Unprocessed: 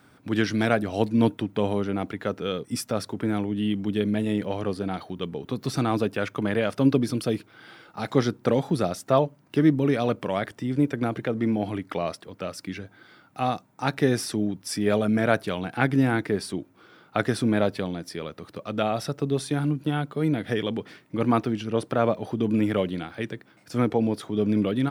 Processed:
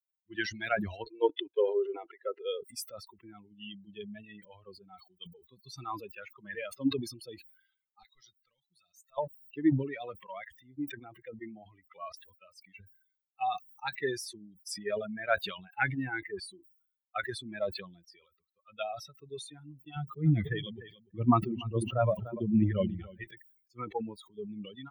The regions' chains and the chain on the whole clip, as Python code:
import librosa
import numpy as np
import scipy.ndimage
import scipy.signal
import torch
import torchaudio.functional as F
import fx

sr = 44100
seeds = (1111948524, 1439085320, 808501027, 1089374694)

y = fx.chain(x, sr, fx.lowpass(hz=5400.0, slope=12),
    fx.low_shelf_res(hz=280.0, db=-12.0, q=3.0), at=(1.04, 2.61))
y = fx.chain(y, sr, fx.tone_stack(knobs='5-5-5'),
    fx.leveller(passes=1), at=(8.03, 9.18))
y = fx.chain(y, sr, fx.low_shelf(hz=300.0, db=9.5),
    fx.echo_feedback(ms=292, feedback_pct=27, wet_db=-7), at=(19.96, 23.24))
y = fx.bin_expand(y, sr, power=3.0)
y = fx.peak_eq(y, sr, hz=1600.0, db=5.5, octaves=2.5)
y = fx.sustainer(y, sr, db_per_s=88.0)
y = F.gain(torch.from_numpy(y), -4.0).numpy()